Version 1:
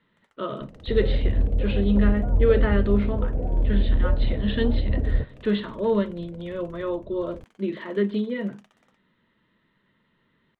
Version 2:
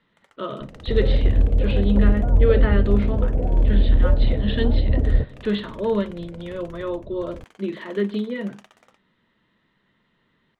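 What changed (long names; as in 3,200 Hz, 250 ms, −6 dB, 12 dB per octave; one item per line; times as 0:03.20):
speech: remove high-frequency loss of the air 110 metres
first sound +9.0 dB
second sound +4.5 dB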